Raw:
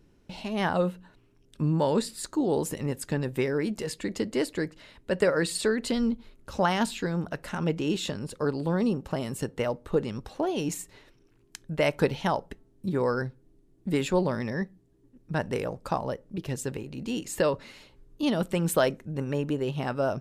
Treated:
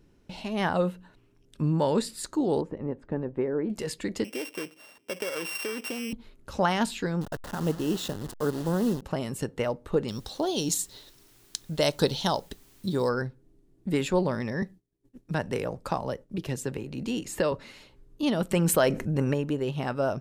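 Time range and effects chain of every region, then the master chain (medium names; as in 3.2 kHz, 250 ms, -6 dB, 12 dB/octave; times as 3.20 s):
2.61–3.70 s: low-pass 1 kHz + peaking EQ 130 Hz -6.5 dB 0.76 oct
4.24–6.13 s: sorted samples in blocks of 16 samples + high-pass 300 Hz + compression 4:1, threshold -29 dBFS
7.21–9.02 s: send-on-delta sampling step -34.5 dBFS + peaking EQ 2.3 kHz -14 dB 0.3 oct
10.08–13.09 s: resonant high shelf 3 kHz +7.5 dB, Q 3 + word length cut 10-bit, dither triangular
14.62–17.52 s: expander -51 dBFS + three bands compressed up and down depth 40%
18.51–19.34 s: band-stop 3.6 kHz, Q 11 + level flattener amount 50%
whole clip: none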